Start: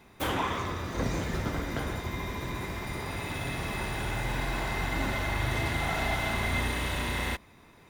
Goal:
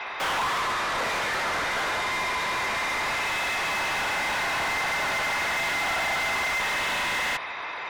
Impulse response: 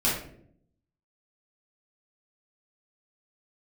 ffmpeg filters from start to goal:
-filter_complex "[0:a]acrossover=split=550 3900:gain=0.0891 1 0.224[link_01][link_02][link_03];[link_01][link_02][link_03]amix=inputs=3:normalize=0,asplit=2[link_04][link_05];[link_05]highpass=frequency=720:poles=1,volume=36dB,asoftclip=type=tanh:threshold=-20.5dB[link_06];[link_04][link_06]amix=inputs=2:normalize=0,lowpass=frequency=4300:poles=1,volume=-6dB,afftfilt=real='re*gte(hypot(re,im),0.00224)':imag='im*gte(hypot(re,im),0.00224)':win_size=1024:overlap=0.75"

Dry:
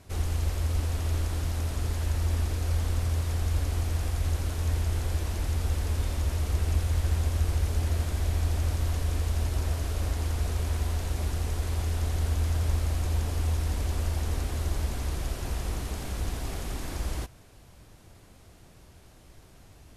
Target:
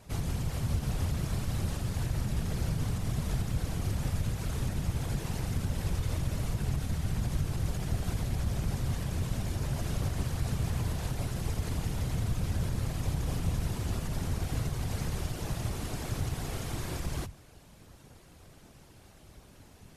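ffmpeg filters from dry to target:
ffmpeg -i in.wav -af "alimiter=limit=-22.5dB:level=0:latency=1:release=83,bandreject=frequency=50:width_type=h:width=6,bandreject=frequency=100:width_type=h:width=6,bandreject=frequency=150:width_type=h:width=6,afftfilt=real='hypot(re,im)*cos(2*PI*random(0))':imag='hypot(re,im)*sin(2*PI*random(1))':win_size=512:overlap=0.75,volume=5.5dB" out.wav

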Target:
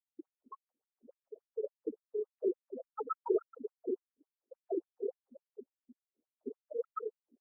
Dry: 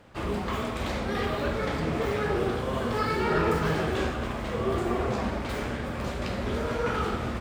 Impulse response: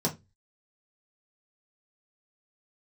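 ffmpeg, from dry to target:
-filter_complex "[0:a]afftfilt=real='re*gte(hypot(re,im),0.2)':imag='im*gte(hypot(re,im),0.2)':win_size=1024:overlap=0.75,acrossover=split=610|2000[link_01][link_02][link_03];[link_03]alimiter=level_in=27dB:limit=-24dB:level=0:latency=1:release=323,volume=-27dB[link_04];[link_01][link_02][link_04]amix=inputs=3:normalize=0,afftfilt=real='re*between(b*sr/1024,350*pow(5800/350,0.5+0.5*sin(2*PI*3.5*pts/sr))/1.41,350*pow(5800/350,0.5+0.5*sin(2*PI*3.5*pts/sr))*1.41)':imag='im*between(b*sr/1024,350*pow(5800/350,0.5+0.5*sin(2*PI*3.5*pts/sr))/1.41,350*pow(5800/350,0.5+0.5*sin(2*PI*3.5*pts/sr))*1.41)':win_size=1024:overlap=0.75,volume=1dB"

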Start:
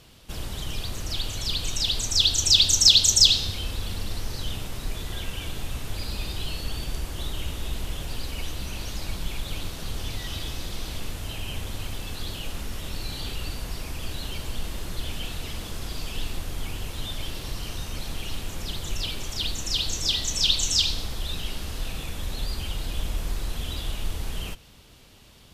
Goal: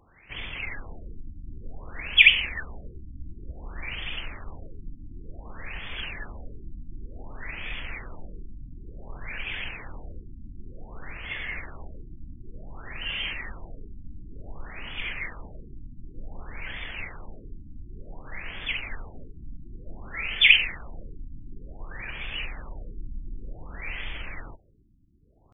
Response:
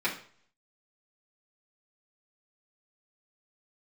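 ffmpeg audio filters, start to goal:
-af "crystalizer=i=8.5:c=0,asetrate=30296,aresample=44100,atempo=1.45565,afftfilt=real='re*lt(b*sr/1024,320*pow(3600/320,0.5+0.5*sin(2*PI*0.55*pts/sr)))':imag='im*lt(b*sr/1024,320*pow(3600/320,0.5+0.5*sin(2*PI*0.55*pts/sr)))':win_size=1024:overlap=0.75,volume=-6.5dB"

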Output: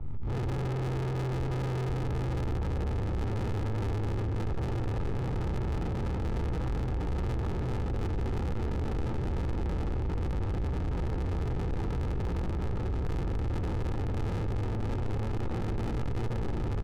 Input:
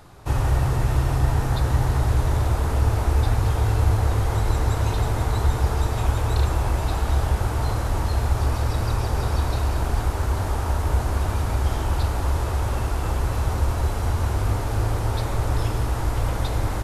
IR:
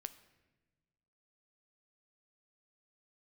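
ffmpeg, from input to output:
-filter_complex "[0:a]bass=frequency=250:gain=7,treble=frequency=4000:gain=-8,bandreject=frequency=360:width=12,acrossover=split=120[link_01][link_02];[link_01]alimiter=level_in=7dB:limit=-24dB:level=0:latency=1:release=127,volume=-7dB[link_03];[link_03][link_02]amix=inputs=2:normalize=0,aemphasis=mode=reproduction:type=riaa[link_04];[1:a]atrim=start_sample=2205[link_05];[link_04][link_05]afir=irnorm=-1:irlink=0,tremolo=f=110:d=0.889,bandreject=frequency=50:width_type=h:width=6,bandreject=frequency=100:width_type=h:width=6,bandreject=frequency=150:width_type=h:width=6,bandreject=frequency=200:width_type=h:width=6,bandreject=frequency=250:width_type=h:width=6,bandreject=frequency=300:width_type=h:width=6,bandreject=frequency=350:width_type=h:width=6,bandreject=frequency=400:width_type=h:width=6,bandreject=frequency=450:width_type=h:width=6,aecho=1:1:22|40:0.355|0.447,asplit=2[link_06][link_07];[link_07]acrusher=samples=40:mix=1:aa=0.000001,volume=-3dB[link_08];[link_06][link_08]amix=inputs=2:normalize=0,asoftclip=type=tanh:threshold=-30dB,aecho=1:1:2.3:0.38,adynamicsmooth=sensitivity=7:basefreq=570"

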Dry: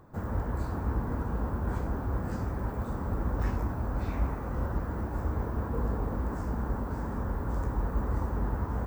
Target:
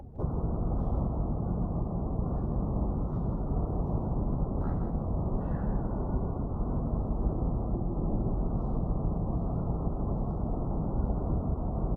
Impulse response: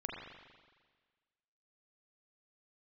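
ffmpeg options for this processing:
-filter_complex "[0:a]lowpass=frequency=2900:poles=1,bandreject=frequency=50:width_type=h:width=6,bandreject=frequency=100:width_type=h:width=6,bandreject=frequency=150:width_type=h:width=6,bandreject=frequency=200:width_type=h:width=6,bandreject=frequency=250:width_type=h:width=6,afftdn=noise_reduction=15:noise_floor=-52,highpass=42,lowshelf=frequency=91:gain=9.5,acrossover=split=160|340[link_01][link_02][link_03];[link_01]acompressor=threshold=-40dB:ratio=4[link_04];[link_03]acompressor=threshold=-45dB:ratio=4[link_05];[link_04][link_02][link_05]amix=inputs=3:normalize=0,alimiter=level_in=7dB:limit=-24dB:level=0:latency=1:release=352,volume=-7dB,acompressor=mode=upward:threshold=-57dB:ratio=2.5,asplit=2[link_06][link_07];[link_07]asetrate=29433,aresample=44100,atempo=1.49831,volume=-3dB[link_08];[link_06][link_08]amix=inputs=2:normalize=0,asplit=2[link_09][link_10];[link_10]aecho=0:1:119:0.422[link_11];[link_09][link_11]amix=inputs=2:normalize=0,asetrate=32667,aresample=44100,volume=8dB"

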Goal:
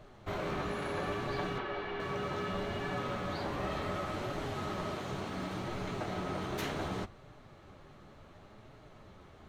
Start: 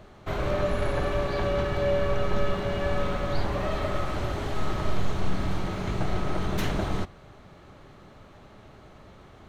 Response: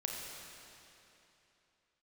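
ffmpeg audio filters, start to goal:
-filter_complex "[0:a]asettb=1/sr,asplit=3[link_01][link_02][link_03];[link_01]atrim=end=1.584[link_04];[link_02]atrim=start=1.58:end=2,asetpts=PTS-STARTPTS,afade=type=in:duration=0.004:curve=qsin,afade=type=out:start_time=0.416:duration=0.004:curve=qsin,acrossover=split=270 4300:gain=0.126 1 0.0708[link_05][link_06][link_07];[link_05][link_06][link_07]amix=inputs=3:normalize=0[link_08];[link_03]atrim=start=1.996[link_09];[link_04][link_08]acrossfade=duration=0.004:curve1=hsin:curve2=qsin[link_10];[link_10][link_09]acrossfade=duration=0.004:curve1=qsin:curve2=hsin,afftfilt=real='re*lt(hypot(re,im),0.251)':imag='im*lt(hypot(re,im),0.251)':win_size=1024:overlap=0.75,flanger=delay=6.3:depth=8.5:regen=-29:speed=0.68:shape=triangular,volume=-1.5dB"

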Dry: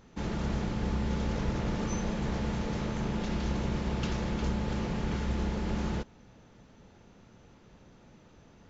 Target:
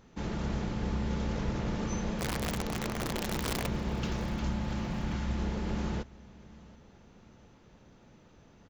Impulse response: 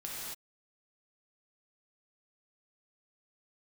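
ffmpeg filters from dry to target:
-filter_complex "[0:a]asplit=3[link_01][link_02][link_03];[link_01]afade=type=out:start_time=2.19:duration=0.02[link_04];[link_02]aeval=exprs='(mod(17.8*val(0)+1,2)-1)/17.8':channel_layout=same,afade=type=in:start_time=2.19:duration=0.02,afade=type=out:start_time=3.66:duration=0.02[link_05];[link_03]afade=type=in:start_time=3.66:duration=0.02[link_06];[link_04][link_05][link_06]amix=inputs=3:normalize=0,asettb=1/sr,asplit=3[link_07][link_08][link_09];[link_07]atrim=end=4.244[link_10];[link_08]atrim=start=4.24:end=5.42,asetpts=PTS-STARTPTS,afade=type=in:duration=0.004:curve=qsin,afade=type=out:start_time=1.176:duration=0.004:curve=qsin,equalizer=frequency=440:width=7.2:gain=-15[link_11];[link_09]atrim=start=5.416[link_12];[link_10][link_11]acrossfade=duration=0.004:curve1=hsin:curve2=qsin[link_13];[link_13][link_12]acrossfade=duration=0.004:curve1=qsin:curve2=hsin,aecho=1:1:730|1460|2190:0.0708|0.0297|0.0125,volume=-1.5dB"

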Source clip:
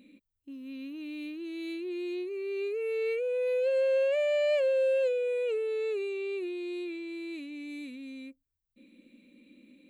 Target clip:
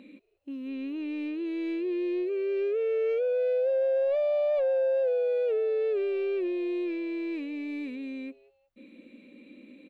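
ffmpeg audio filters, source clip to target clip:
ffmpeg -i in.wav -filter_complex "[0:a]acrossover=split=2600[link_01][link_02];[link_02]acompressor=threshold=-58dB:ratio=4:attack=1:release=60[link_03];[link_01][link_03]amix=inputs=2:normalize=0,asoftclip=type=tanh:threshold=-26.5dB,asplit=2[link_04][link_05];[link_05]highpass=frequency=720:poles=1,volume=14dB,asoftclip=type=tanh:threshold=-26.5dB[link_06];[link_04][link_06]amix=inputs=2:normalize=0,lowpass=frequency=1000:poles=1,volume=-6dB,asplit=2[link_07][link_08];[link_08]asplit=2[link_09][link_10];[link_09]adelay=183,afreqshift=140,volume=-22.5dB[link_11];[link_10]adelay=366,afreqshift=280,volume=-32.1dB[link_12];[link_11][link_12]amix=inputs=2:normalize=0[link_13];[link_07][link_13]amix=inputs=2:normalize=0,volume=5.5dB" out.wav

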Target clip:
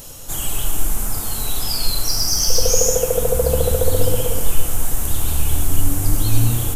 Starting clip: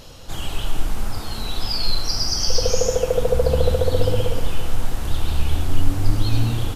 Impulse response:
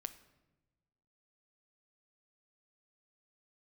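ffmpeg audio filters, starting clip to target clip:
-filter_complex "[0:a]asplit=2[link_01][link_02];[1:a]atrim=start_sample=2205[link_03];[link_02][link_03]afir=irnorm=-1:irlink=0,volume=13dB[link_04];[link_01][link_04]amix=inputs=2:normalize=0,aexciter=amount=5.9:drive=6.2:freq=6500,volume=-11.5dB"

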